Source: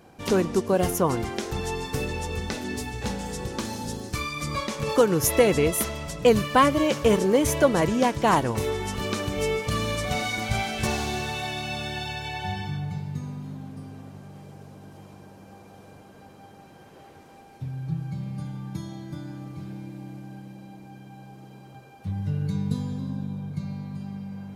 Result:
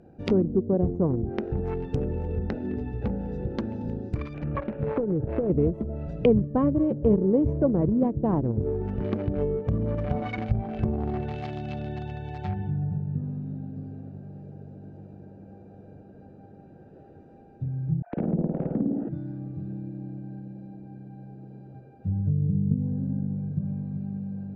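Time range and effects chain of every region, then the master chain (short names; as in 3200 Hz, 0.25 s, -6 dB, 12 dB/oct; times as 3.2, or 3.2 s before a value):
4.34–5.5 CVSD 16 kbps + compressor, threshold -22 dBFS
18.02–19.09 sine-wave speech + flutter echo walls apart 9.1 m, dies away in 1.5 s
whole clip: Wiener smoothing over 41 samples; treble ducked by the level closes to 370 Hz, closed at -23 dBFS; high shelf 9800 Hz -8.5 dB; gain +3 dB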